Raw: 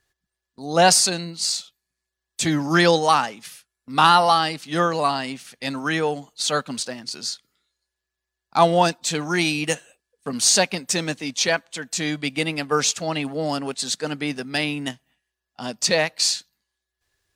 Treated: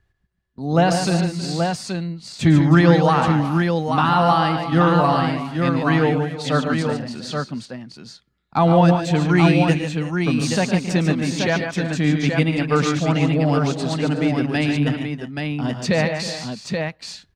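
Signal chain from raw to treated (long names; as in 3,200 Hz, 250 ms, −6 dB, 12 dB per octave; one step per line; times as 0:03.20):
brickwall limiter −9 dBFS, peak gain reduction 8 dB
bass and treble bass +13 dB, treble −15 dB
multi-tap delay 110/144/320/368/828 ms −11.5/−7/−15/−15/−5 dB
level +1 dB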